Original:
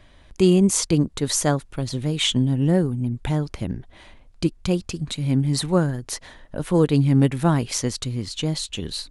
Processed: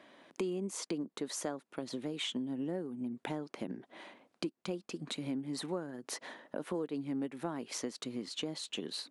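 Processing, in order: high-pass 230 Hz 24 dB/octave; treble shelf 2.8 kHz -9.5 dB; compression 5:1, threshold -36 dBFS, peak gain reduction 19 dB

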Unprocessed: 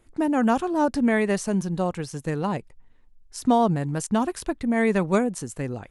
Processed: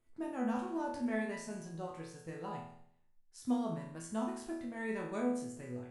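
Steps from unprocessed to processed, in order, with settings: chord resonator E2 sus4, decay 0.7 s; trim +1 dB

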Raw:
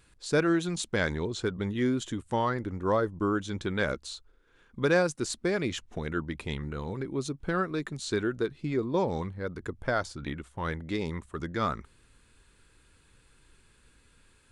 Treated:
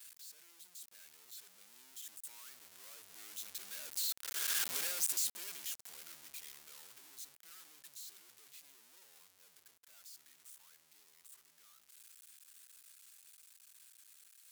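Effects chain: one-bit comparator; Doppler pass-by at 4.68 s, 6 m/s, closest 1.6 m; differentiator; trim +5 dB

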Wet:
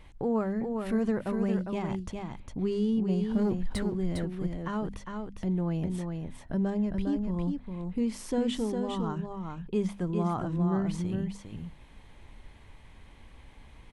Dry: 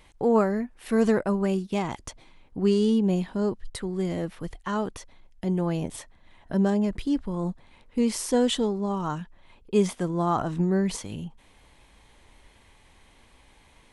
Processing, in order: tone controls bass +8 dB, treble -7 dB; hum notches 50/100/150/200/250 Hz; compression 1.5:1, threshold -39 dBFS, peak gain reduction 9 dB; 3.30–3.83 s: waveshaping leveller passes 2; on a send: delay 405 ms -5 dB; on the sum: trim -1 dB

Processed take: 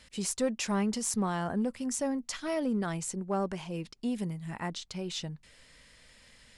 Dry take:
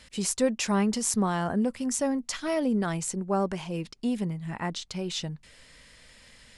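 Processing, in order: 4.18–4.67 s: treble shelf 5.6 kHz -> 8.3 kHz +10.5 dB; in parallel at -5 dB: overload inside the chain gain 21 dB; on the sum: trim -8 dB

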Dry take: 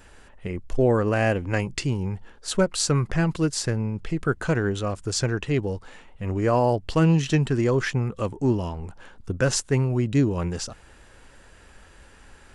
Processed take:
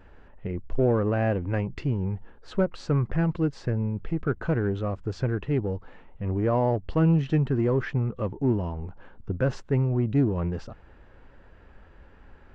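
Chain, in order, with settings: in parallel at -7 dB: hard clipper -25 dBFS, distortion -6 dB; on the sum: tape spacing loss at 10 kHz 40 dB; trim -2.5 dB

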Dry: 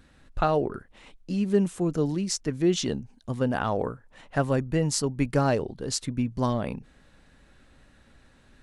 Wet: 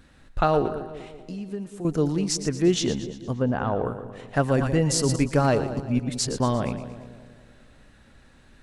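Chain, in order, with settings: 0.72–1.85 s: compression 2.5:1, threshold -40 dBFS, peak gain reduction 15.5 dB; 3.33–3.86 s: tape spacing loss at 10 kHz 29 dB; 5.77–6.40 s: reverse; two-band feedback delay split 730 Hz, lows 192 ms, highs 116 ms, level -11.5 dB; 4.46–5.16 s: decay stretcher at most 45 dB/s; trim +2.5 dB

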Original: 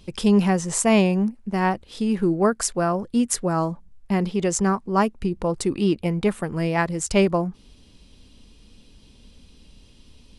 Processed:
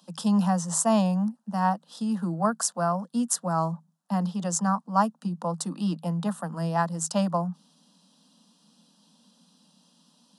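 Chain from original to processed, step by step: Chebyshev high-pass 160 Hz, order 10; static phaser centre 930 Hz, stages 4

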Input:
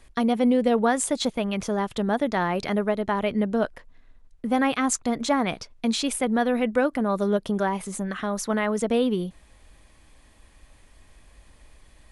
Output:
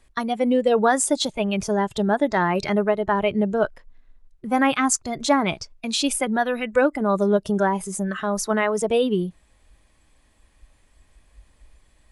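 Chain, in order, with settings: spectral noise reduction 10 dB; 6.04–7.57 s: tape noise reduction on one side only encoder only; trim +4.5 dB

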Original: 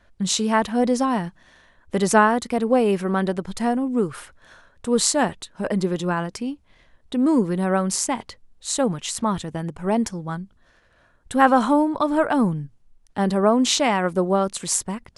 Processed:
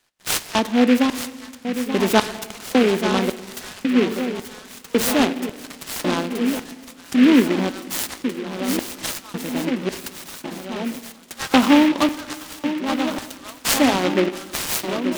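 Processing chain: 11.51–12.15 s: treble shelf 2.5 kHz +10 dB; shuffle delay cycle 1469 ms, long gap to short 1.5:1, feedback 62%, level -9.5 dB; LFO high-pass square 0.91 Hz 260–2900 Hz; on a send at -14 dB: reverberation RT60 1.5 s, pre-delay 9 ms; on the sum: delay time shaken by noise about 2 kHz, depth 0.1 ms; trim -1.5 dB

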